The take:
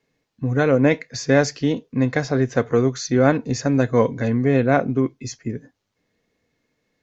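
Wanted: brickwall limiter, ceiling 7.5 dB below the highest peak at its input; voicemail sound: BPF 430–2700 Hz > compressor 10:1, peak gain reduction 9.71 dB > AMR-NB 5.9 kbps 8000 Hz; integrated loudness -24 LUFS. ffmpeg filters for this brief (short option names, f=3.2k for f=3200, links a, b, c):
-af "alimiter=limit=-9dB:level=0:latency=1,highpass=430,lowpass=2.7k,acompressor=threshold=-27dB:ratio=10,volume=10.5dB" -ar 8000 -c:a libopencore_amrnb -b:a 5900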